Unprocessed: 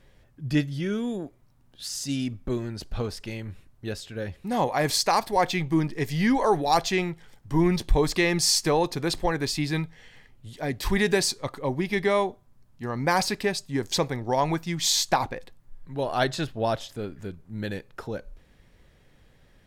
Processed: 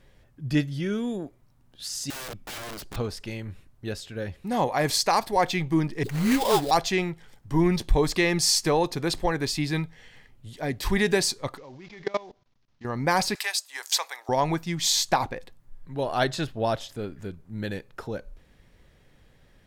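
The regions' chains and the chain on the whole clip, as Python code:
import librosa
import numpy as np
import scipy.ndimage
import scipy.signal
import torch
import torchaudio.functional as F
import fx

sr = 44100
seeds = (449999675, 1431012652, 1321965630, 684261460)

y = fx.chain(x, sr, fx.comb(ms=5.6, depth=0.36),
    fx.overflow_wrap(gain_db=32.0), at=(2.1, 2.96))
y = fx.chain(y, sr, fx.dispersion(late='highs', ms=65.0, hz=440.0),
    fx.sample_hold(seeds[0], rate_hz=4300.0, jitter_pct=20), at=(6.03, 6.71))
y = fx.chain(y, sr, fx.cvsd(bps=32000),
    fx.low_shelf(hz=240.0, db=-6.5),
    fx.level_steps(step_db=22), at=(11.57, 12.85))
y = fx.chain(y, sr, fx.highpass(hz=800.0, slope=24),
    fx.high_shelf(hz=5600.0, db=9.5),
    fx.band_squash(depth_pct=40), at=(13.35, 14.29))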